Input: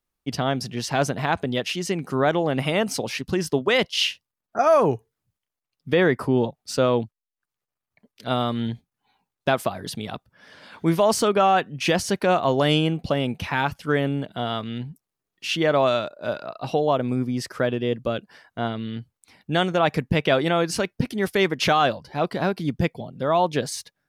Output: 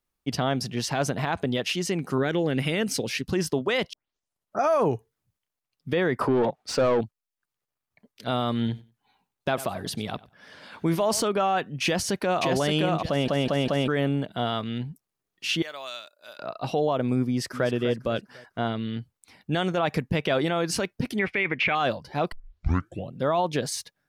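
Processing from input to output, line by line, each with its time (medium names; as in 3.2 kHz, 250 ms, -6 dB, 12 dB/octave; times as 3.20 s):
2.18–3.25 s: high-order bell 860 Hz -9 dB 1.3 oct
3.93 s: tape start 0.67 s
6.21–7.01 s: overdrive pedal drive 20 dB, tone 1.3 kHz, clips at -9 dBFS
8.52–11.22 s: feedback delay 94 ms, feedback 19%, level -20.5 dB
11.84–12.45 s: echo throw 570 ms, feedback 15%, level -2.5 dB
13.08 s: stutter in place 0.20 s, 4 plays
15.62–16.39 s: differentiator
17.28–17.69 s: echo throw 250 ms, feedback 40%, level -11.5 dB
21.19–21.75 s: resonant low-pass 2.3 kHz, resonance Q 6.8
22.32 s: tape start 0.82 s
whole clip: peak limiter -15 dBFS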